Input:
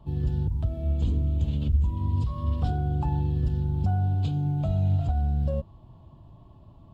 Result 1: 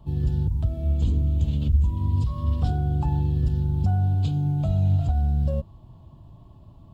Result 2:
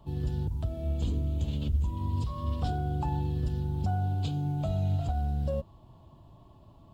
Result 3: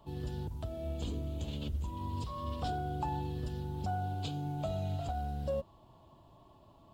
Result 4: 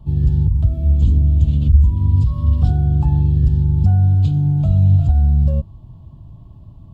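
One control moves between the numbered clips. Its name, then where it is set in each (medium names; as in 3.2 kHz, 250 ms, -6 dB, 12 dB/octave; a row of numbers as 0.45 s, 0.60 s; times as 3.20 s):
tone controls, bass: +3 dB, -5 dB, -14 dB, +12 dB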